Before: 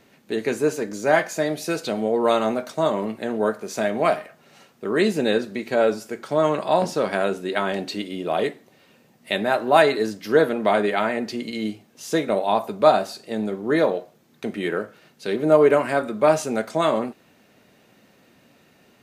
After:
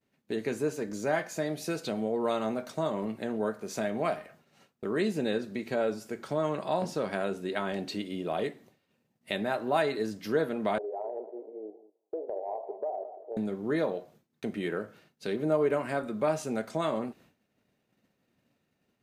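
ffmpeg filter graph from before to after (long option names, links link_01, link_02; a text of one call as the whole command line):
ffmpeg -i in.wav -filter_complex "[0:a]asettb=1/sr,asplit=3[link_01][link_02][link_03];[link_01]atrim=end=10.784[link_04];[link_02]atrim=start=10.78:end=13.37,asetpts=PTS-STARTPTS,afade=type=in:duration=0.004:curve=qsin,afade=type=out:start_time=2.586:duration=0.004:curve=qsin,asuperpass=centerf=560:order=8:qfactor=1.2,acompressor=threshold=-26dB:ratio=3:attack=3.2:release=140:knee=1:detection=peak,aecho=1:1:196|392|588:0.2|0.0619|0.0192,atrim=end_sample=114219[link_05];[link_03]atrim=start=13.366[link_06];[link_04][link_05]acrossfade=duration=0.004:curve1=hsin:curve2=qsin[link_07];[link_07][link_06]acrossfade=duration=0.004:curve1=qsin:curve2=hsin,lowshelf=frequency=190:gain=8,agate=range=-33dB:threshold=-43dB:ratio=3:detection=peak,acompressor=threshold=-29dB:ratio=1.5,volume=-5.5dB" out.wav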